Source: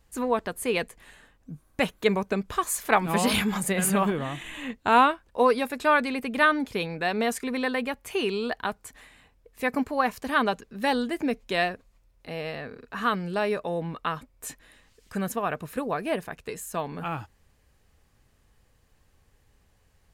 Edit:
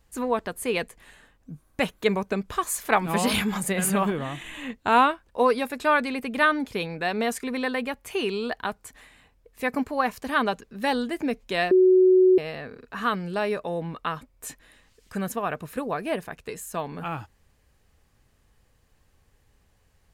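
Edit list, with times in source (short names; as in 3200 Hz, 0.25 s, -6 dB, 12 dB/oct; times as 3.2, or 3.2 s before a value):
11.71–12.38 bleep 371 Hz -13 dBFS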